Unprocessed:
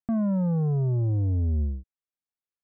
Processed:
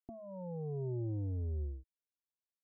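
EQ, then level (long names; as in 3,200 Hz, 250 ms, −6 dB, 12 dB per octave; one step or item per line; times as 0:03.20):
Chebyshev low-pass with heavy ripple 1,300 Hz, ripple 9 dB
phaser with its sweep stopped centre 510 Hz, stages 4
−2.0 dB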